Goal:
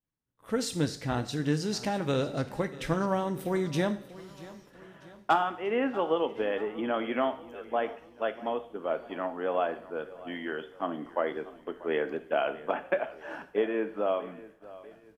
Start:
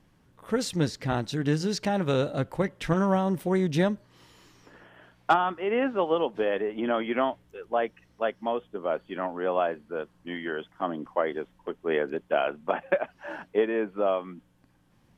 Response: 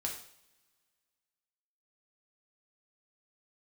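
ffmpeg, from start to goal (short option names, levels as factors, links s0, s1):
-filter_complex "[0:a]aecho=1:1:639|1278|1917|2556:0.119|0.063|0.0334|0.0177,agate=range=0.0224:threshold=0.00501:ratio=3:detection=peak,asplit=2[s0][s1];[1:a]atrim=start_sample=2205,highshelf=f=4600:g=9[s2];[s1][s2]afir=irnorm=-1:irlink=0,volume=0.473[s3];[s0][s3]amix=inputs=2:normalize=0,volume=0.501"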